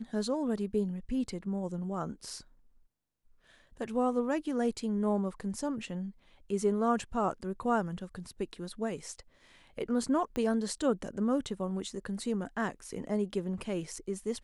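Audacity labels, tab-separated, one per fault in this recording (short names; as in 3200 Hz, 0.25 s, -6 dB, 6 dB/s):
10.360000	10.360000	pop -21 dBFS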